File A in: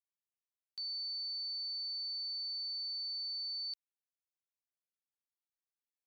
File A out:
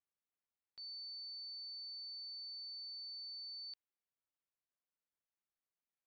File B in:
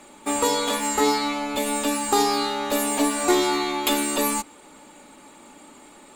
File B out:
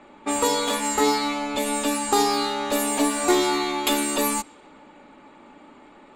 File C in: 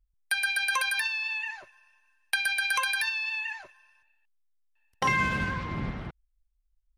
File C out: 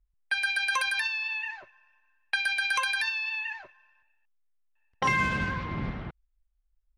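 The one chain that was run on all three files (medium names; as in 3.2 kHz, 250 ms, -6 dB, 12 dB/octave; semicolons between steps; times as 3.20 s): level-controlled noise filter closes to 2.3 kHz, open at -20.5 dBFS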